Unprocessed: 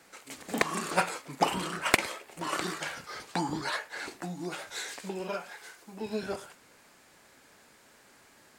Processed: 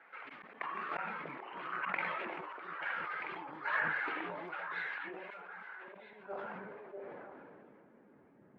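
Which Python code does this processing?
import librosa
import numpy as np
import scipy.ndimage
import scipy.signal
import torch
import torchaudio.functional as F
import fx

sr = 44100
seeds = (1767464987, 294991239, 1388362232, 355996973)

p1 = fx.spec_quant(x, sr, step_db=15)
p2 = scipy.signal.sosfilt(scipy.signal.butter(4, 2700.0, 'lowpass', fs=sr, output='sos'), p1)
p3 = fx.auto_swell(p2, sr, attack_ms=475.0)
p4 = fx.schmitt(p3, sr, flips_db=-34.0)
p5 = p3 + F.gain(torch.from_numpy(p4), -11.0).numpy()
p6 = fx.echo_stepped(p5, sr, ms=320, hz=160.0, octaves=1.4, feedback_pct=70, wet_db=-1.0)
p7 = fx.filter_sweep_bandpass(p6, sr, from_hz=1500.0, to_hz=210.0, start_s=5.42, end_s=8.37, q=0.97)
p8 = fx.sustainer(p7, sr, db_per_s=20.0)
y = F.gain(torch.from_numpy(p8), 2.5).numpy()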